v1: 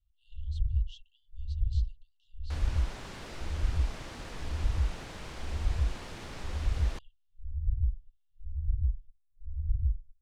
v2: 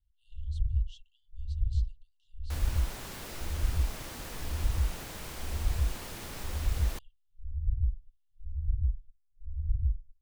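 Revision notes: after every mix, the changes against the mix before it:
speech -4.5 dB; master: remove distance through air 80 m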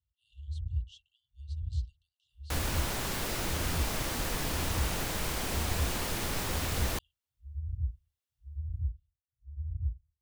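first sound: add high-pass 69 Hz 24 dB/octave; second sound +8.5 dB

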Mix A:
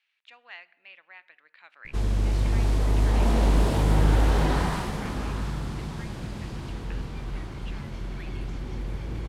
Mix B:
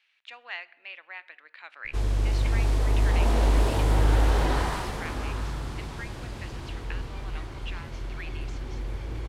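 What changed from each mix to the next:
speech +7.0 dB; master: add peaking EQ 180 Hz -11.5 dB 0.67 oct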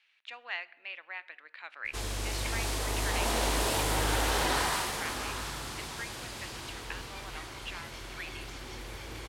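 background: add tilt EQ +3 dB/octave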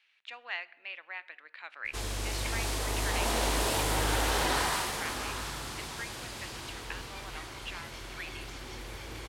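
no change

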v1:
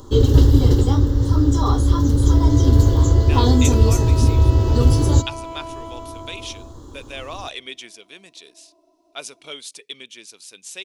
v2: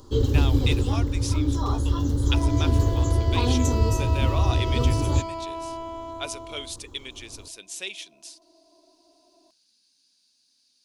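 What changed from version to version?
speech: entry -2.95 s; first sound -7.5 dB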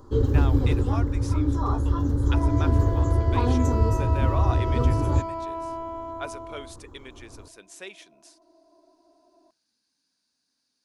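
master: add resonant high shelf 2.2 kHz -9.5 dB, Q 1.5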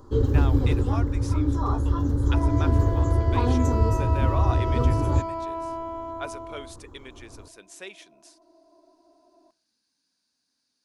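second sound: send +7.5 dB

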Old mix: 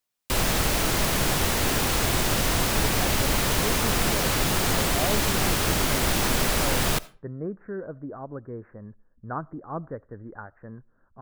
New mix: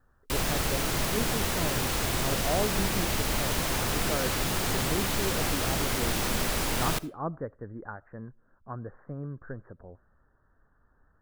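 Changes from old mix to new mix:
speech: entry -2.50 s; background -5.0 dB

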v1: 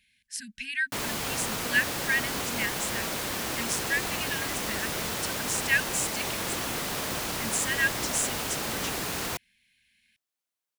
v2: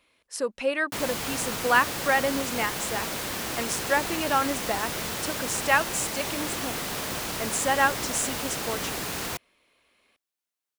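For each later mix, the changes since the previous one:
speech: remove brick-wall FIR band-stop 250–1500 Hz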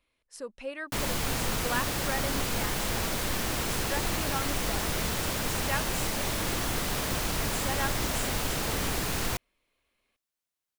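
speech -11.5 dB; master: remove high-pass 190 Hz 6 dB/octave

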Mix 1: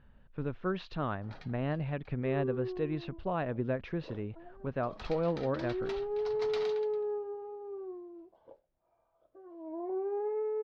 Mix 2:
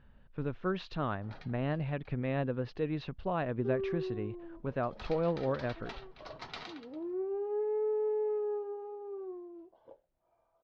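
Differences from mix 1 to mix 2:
first sound: add distance through air 91 m; second sound: entry +1.40 s; master: add treble shelf 5.5 kHz +5.5 dB

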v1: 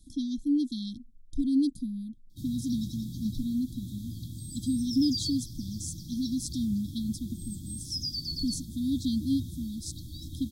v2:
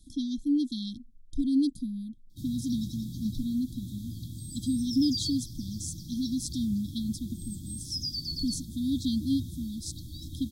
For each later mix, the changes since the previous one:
speech: add peaking EQ 2.4 kHz +5 dB 1.3 oct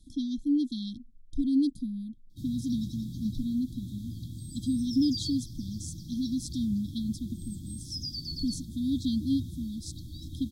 master: add treble shelf 4.8 kHz -6.5 dB

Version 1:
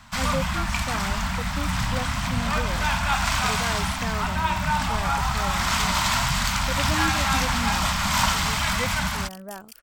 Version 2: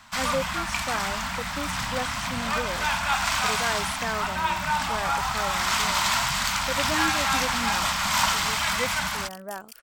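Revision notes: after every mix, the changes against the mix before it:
speech +4.0 dB; master: add bass shelf 240 Hz -12 dB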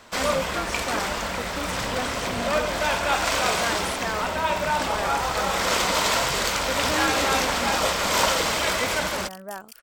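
first sound: remove Chebyshev band-stop 200–890 Hz, order 2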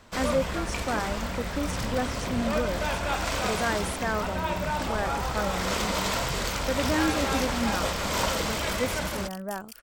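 first sound -7.0 dB; master: add bass shelf 240 Hz +12 dB

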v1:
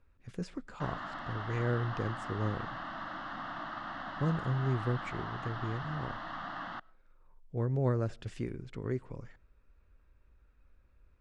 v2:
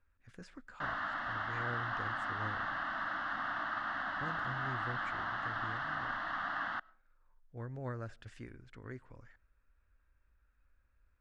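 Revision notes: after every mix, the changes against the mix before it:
speech -8.0 dB; master: add fifteen-band graphic EQ 160 Hz -8 dB, 400 Hz -6 dB, 1.6 kHz +8 dB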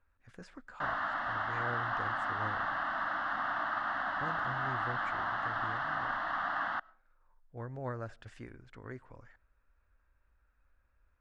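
master: add peaking EQ 790 Hz +6 dB 1.5 oct

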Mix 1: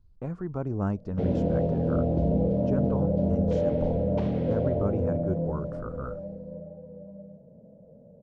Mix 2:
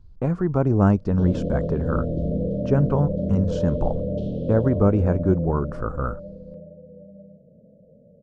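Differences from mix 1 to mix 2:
speech +11.0 dB; background: add elliptic band-stop 600–3200 Hz, stop band 40 dB

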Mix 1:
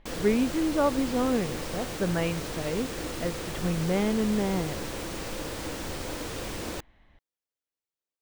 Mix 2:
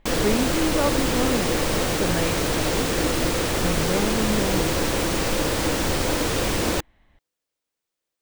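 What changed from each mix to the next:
background +12.0 dB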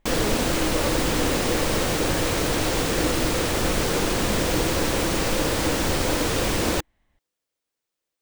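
speech -9.0 dB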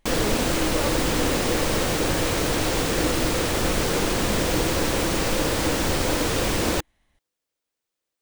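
speech: remove distance through air 260 m

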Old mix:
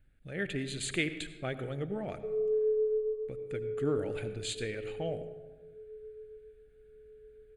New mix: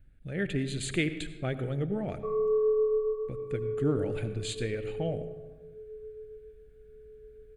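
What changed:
background: remove steep low-pass 660 Hz 36 dB/octave; master: add bass shelf 340 Hz +8 dB

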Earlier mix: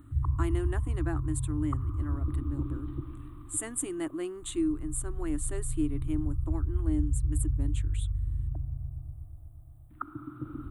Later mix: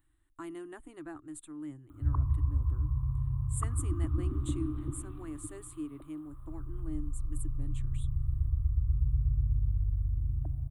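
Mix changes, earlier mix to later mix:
speech -9.0 dB; background: entry +1.90 s

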